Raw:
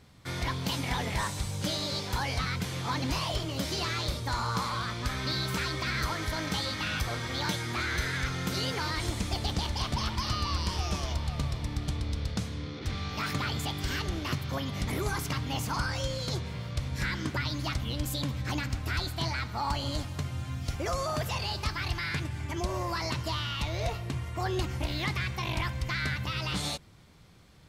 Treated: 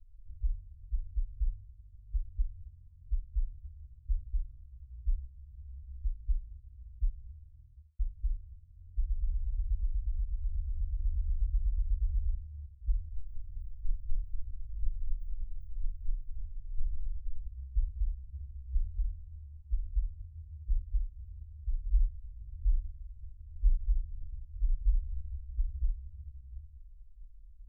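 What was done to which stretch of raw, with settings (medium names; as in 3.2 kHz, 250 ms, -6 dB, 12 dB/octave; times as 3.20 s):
7.50–7.99 s: studio fade out
13.15–17.46 s: comb filter that takes the minimum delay 9 ms
21.82–24.99 s: reverb throw, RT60 0.96 s, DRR -11 dB
whole clip: peak limiter -26 dBFS; inverse Chebyshev band-stop 190–9800 Hz, stop band 70 dB; RIAA curve playback; trim +1 dB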